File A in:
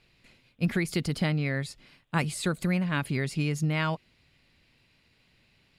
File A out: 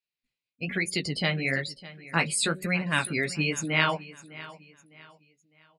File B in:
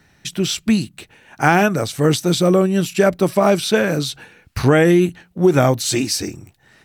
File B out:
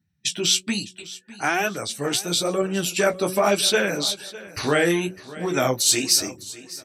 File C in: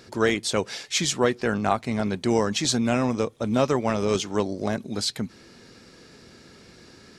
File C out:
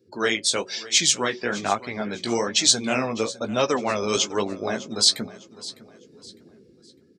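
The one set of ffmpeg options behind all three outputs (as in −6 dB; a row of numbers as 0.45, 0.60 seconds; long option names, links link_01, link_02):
-filter_complex "[0:a]acrossover=split=640[link_01][link_02];[link_01]acontrast=23[link_03];[link_03][link_02]amix=inputs=2:normalize=0,afftdn=noise_reduction=32:noise_floor=-39,equalizer=frequency=3100:width=0.4:gain=8,bandreject=frequency=185:width_type=h:width=4,bandreject=frequency=370:width_type=h:width=4,bandreject=frequency=555:width_type=h:width=4,aeval=exprs='2.11*(cos(1*acos(clip(val(0)/2.11,-1,1)))-cos(1*PI/2))+0.0299*(cos(2*acos(clip(val(0)/2.11,-1,1)))-cos(2*PI/2))+0.0266*(cos(5*acos(clip(val(0)/2.11,-1,1)))-cos(5*PI/2))':channel_layout=same,dynaudnorm=framelen=230:gausssize=9:maxgain=14dB,aemphasis=mode=production:type=bsi,flanger=delay=9.6:depth=8.6:regen=-21:speed=1.1:shape=sinusoidal,asplit=2[link_04][link_05];[link_05]aecho=0:1:605|1210|1815:0.126|0.0428|0.0146[link_06];[link_04][link_06]amix=inputs=2:normalize=0,volume=-3dB"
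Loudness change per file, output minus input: +2.0, −5.0, +2.5 LU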